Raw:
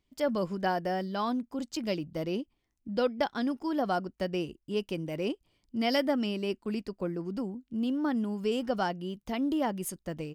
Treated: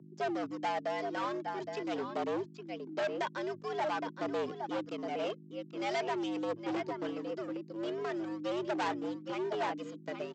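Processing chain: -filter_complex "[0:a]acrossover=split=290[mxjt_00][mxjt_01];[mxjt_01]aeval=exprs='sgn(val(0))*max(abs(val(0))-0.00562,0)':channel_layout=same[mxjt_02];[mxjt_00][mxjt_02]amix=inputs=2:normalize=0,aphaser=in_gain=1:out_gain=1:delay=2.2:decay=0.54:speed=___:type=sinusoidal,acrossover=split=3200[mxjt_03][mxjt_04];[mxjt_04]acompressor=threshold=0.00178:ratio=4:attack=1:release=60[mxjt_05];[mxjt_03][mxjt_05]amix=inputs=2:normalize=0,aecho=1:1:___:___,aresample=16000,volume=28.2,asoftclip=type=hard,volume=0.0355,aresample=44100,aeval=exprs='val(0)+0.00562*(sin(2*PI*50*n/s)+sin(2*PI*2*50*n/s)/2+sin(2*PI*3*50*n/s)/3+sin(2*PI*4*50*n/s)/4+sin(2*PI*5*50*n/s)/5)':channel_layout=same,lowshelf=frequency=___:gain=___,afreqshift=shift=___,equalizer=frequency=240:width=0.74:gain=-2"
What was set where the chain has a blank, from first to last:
0.45, 816, 0.335, 130, -8, 110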